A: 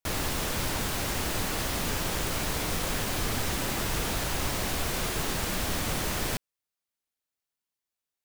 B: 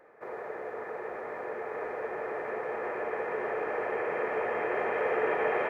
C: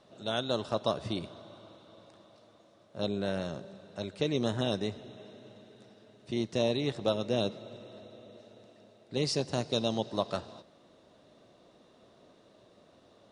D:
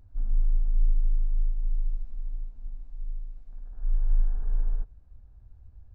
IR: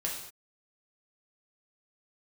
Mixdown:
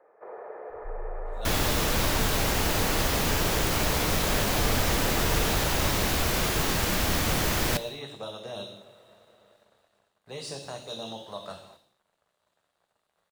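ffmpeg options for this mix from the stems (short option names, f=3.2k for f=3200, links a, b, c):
-filter_complex "[0:a]equalizer=f=8.9k:t=o:w=0.39:g=-4,adelay=1400,volume=3dB,asplit=2[a][b];[b]volume=-15dB[c];[1:a]equalizer=f=2.1k:t=o:w=1.7:g=-11,volume=2.5dB[d];[2:a]highshelf=f=2.3k:g=4.5,aeval=exprs='sgn(val(0))*max(abs(val(0))-0.0015,0)':c=same,aexciter=amount=1.3:drive=7:freq=3k,adelay=1150,volume=-1.5dB,asplit=2[e][f];[f]volume=-12.5dB[g];[3:a]alimiter=limit=-23.5dB:level=0:latency=1,adelay=700,volume=-7dB[h];[d][e]amix=inputs=2:normalize=0,acrossover=split=420 2700:gain=0.158 1 0.0708[i][j][k];[i][j][k]amix=inputs=3:normalize=0,alimiter=level_in=4.5dB:limit=-24dB:level=0:latency=1:release=142,volume=-4.5dB,volume=0dB[l];[4:a]atrim=start_sample=2205[m];[c][g]amix=inputs=2:normalize=0[n];[n][m]afir=irnorm=-1:irlink=0[o];[a][h][l][o]amix=inputs=4:normalize=0"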